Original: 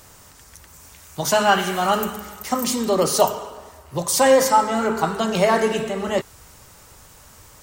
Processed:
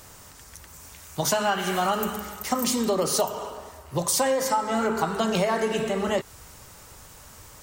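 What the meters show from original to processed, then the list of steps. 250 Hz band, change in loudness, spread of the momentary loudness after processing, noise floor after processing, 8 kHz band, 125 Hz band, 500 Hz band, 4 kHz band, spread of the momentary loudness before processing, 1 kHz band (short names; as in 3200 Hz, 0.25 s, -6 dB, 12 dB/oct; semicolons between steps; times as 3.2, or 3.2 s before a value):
-3.5 dB, -5.5 dB, 20 LU, -48 dBFS, -3.0 dB, -3.0 dB, -6.0 dB, -4.0 dB, 13 LU, -6.0 dB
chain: compressor 10:1, threshold -20 dBFS, peak gain reduction 11 dB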